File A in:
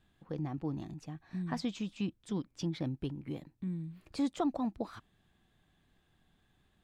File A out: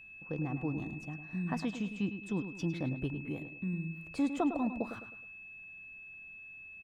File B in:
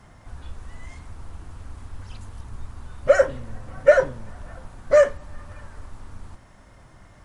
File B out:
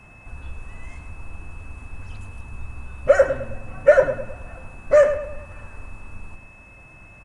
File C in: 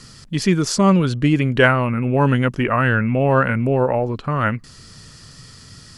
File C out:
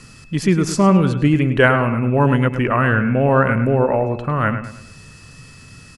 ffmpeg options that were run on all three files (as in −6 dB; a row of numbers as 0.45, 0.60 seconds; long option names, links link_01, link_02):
-filter_complex "[0:a]equalizer=frequency=4500:width=1:gain=-6.5,aeval=exprs='val(0)+0.00282*sin(2*PI*2600*n/s)':channel_layout=same,asplit=2[link_01][link_02];[link_02]adelay=105,lowpass=frequency=3700:poles=1,volume=-9.5dB,asplit=2[link_03][link_04];[link_04]adelay=105,lowpass=frequency=3700:poles=1,volume=0.4,asplit=2[link_05][link_06];[link_06]adelay=105,lowpass=frequency=3700:poles=1,volume=0.4,asplit=2[link_07][link_08];[link_08]adelay=105,lowpass=frequency=3700:poles=1,volume=0.4[link_09];[link_01][link_03][link_05][link_07][link_09]amix=inputs=5:normalize=0,volume=1dB"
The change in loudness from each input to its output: +0.5, +1.0, +1.0 LU